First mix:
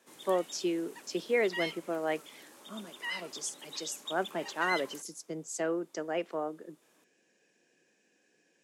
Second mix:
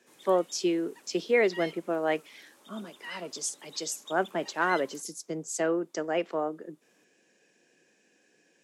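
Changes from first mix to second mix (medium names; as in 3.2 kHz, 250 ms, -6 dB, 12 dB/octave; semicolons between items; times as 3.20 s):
speech +4.5 dB; background -5.0 dB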